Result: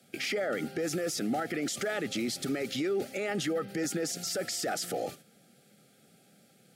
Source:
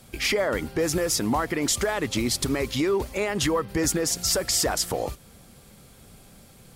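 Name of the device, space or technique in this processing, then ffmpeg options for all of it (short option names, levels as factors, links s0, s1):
PA system with an anti-feedback notch: -af "highpass=f=150:w=0.5412,highpass=f=150:w=1.3066,asuperstop=centerf=1000:order=20:qfactor=2.7,alimiter=limit=0.075:level=0:latency=1:release=13,agate=range=0.447:threshold=0.00501:ratio=16:detection=peak,highpass=74,highshelf=f=8200:g=-5,volume=0.841"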